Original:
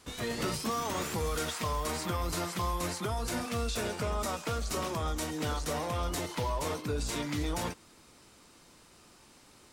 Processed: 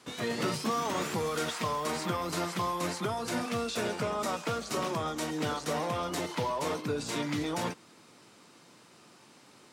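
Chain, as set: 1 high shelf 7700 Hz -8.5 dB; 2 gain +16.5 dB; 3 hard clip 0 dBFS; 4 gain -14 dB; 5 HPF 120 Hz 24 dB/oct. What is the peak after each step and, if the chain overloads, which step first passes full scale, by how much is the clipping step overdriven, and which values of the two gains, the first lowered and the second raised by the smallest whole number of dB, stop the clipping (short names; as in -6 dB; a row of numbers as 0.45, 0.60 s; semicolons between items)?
-22.0, -5.5, -5.5, -19.5, -18.0 dBFS; no overload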